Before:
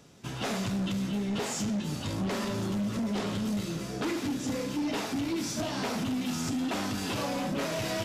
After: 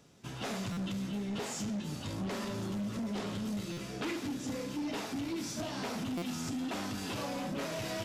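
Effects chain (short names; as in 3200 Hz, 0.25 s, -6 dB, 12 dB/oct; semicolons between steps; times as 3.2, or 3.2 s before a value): 3.69–4.17 bell 2600 Hz +5 dB 1.1 oct; stuck buffer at 0.72/3.72/6.17, samples 256, times 8; gain -5.5 dB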